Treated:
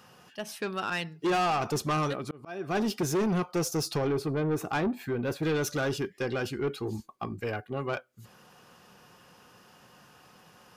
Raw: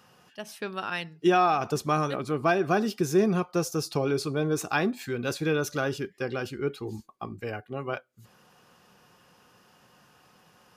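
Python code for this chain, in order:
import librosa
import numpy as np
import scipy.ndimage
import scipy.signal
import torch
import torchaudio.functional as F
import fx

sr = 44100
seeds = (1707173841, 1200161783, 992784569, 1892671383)

y = fx.auto_swell(x, sr, attack_ms=622.0, at=(2.12, 2.74), fade=0.02)
y = fx.peak_eq(y, sr, hz=6500.0, db=-13.5, octaves=2.4, at=(4.07, 5.43))
y = 10.0 ** (-26.5 / 20.0) * np.tanh(y / 10.0 ** (-26.5 / 20.0))
y = y * 10.0 ** (3.0 / 20.0)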